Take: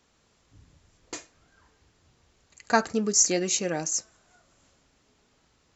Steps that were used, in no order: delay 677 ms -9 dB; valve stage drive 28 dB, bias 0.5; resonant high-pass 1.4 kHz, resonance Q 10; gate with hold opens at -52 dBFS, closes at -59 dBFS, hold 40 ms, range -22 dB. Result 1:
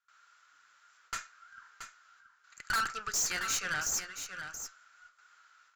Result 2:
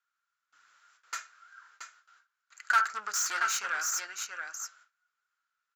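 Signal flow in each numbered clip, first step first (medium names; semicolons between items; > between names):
resonant high-pass > gate with hold > valve stage > delay; delay > gate with hold > valve stage > resonant high-pass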